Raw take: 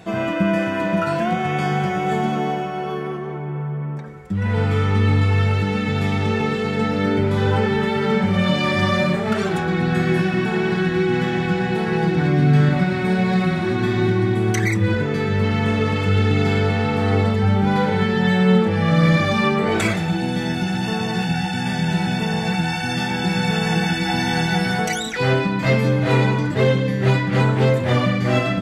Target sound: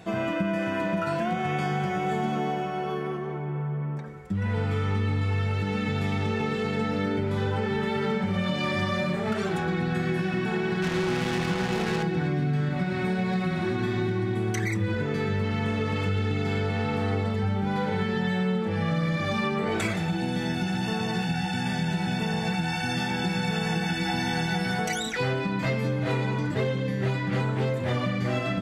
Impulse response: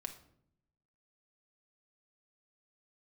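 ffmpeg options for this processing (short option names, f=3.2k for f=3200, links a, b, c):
-filter_complex "[0:a]acompressor=threshold=-19dB:ratio=6,asettb=1/sr,asplit=3[a][b][c];[a]atrim=end=10.824[d];[b]atrim=start=10.82:end=12.03,asetpts=PTS-STARTPTS,afade=t=in:d=0.004:c=qsin,afade=t=out:st=1.206:d=0.004:c=qsin,acrusher=bits=3:mix=0:aa=0.5[e];[c]atrim=start=12.026[f];[d][e]acrossfade=d=0.004:c1=hsin:c2=qsin[g];[g][f]acrossfade=d=0.004:c1=qsin:c2=hsin,volume=-4dB"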